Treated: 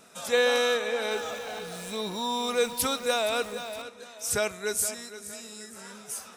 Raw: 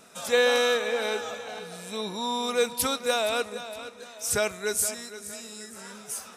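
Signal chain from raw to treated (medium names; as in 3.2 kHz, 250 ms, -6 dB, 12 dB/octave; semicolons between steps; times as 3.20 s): 1.11–3.82 s: jump at every zero crossing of -39 dBFS; trim -1.5 dB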